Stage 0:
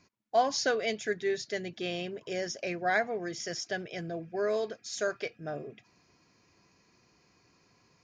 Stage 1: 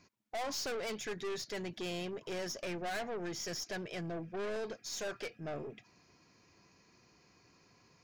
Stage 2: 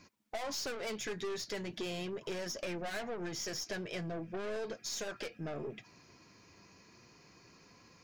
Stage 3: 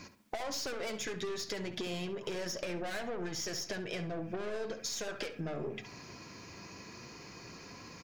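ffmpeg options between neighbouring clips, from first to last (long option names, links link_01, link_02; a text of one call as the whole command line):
ffmpeg -i in.wav -af "aeval=exprs='(tanh(70.8*val(0)+0.3)-tanh(0.3))/70.8':channel_layout=same,volume=1dB" out.wav
ffmpeg -i in.wav -af "bandreject=frequency=740:width=24,acompressor=threshold=-42dB:ratio=6,flanger=delay=3.7:depth=6.7:regen=-59:speed=0.38:shape=sinusoidal,volume=9.5dB" out.wav
ffmpeg -i in.wav -filter_complex "[0:a]acompressor=threshold=-46dB:ratio=12,asplit=2[link_01][link_02];[link_02]adelay=68,lowpass=frequency=2800:poles=1,volume=-9.5dB,asplit=2[link_03][link_04];[link_04]adelay=68,lowpass=frequency=2800:poles=1,volume=0.37,asplit=2[link_05][link_06];[link_06]adelay=68,lowpass=frequency=2800:poles=1,volume=0.37,asplit=2[link_07][link_08];[link_08]adelay=68,lowpass=frequency=2800:poles=1,volume=0.37[link_09];[link_01][link_03][link_05][link_07][link_09]amix=inputs=5:normalize=0,volume=10.5dB" out.wav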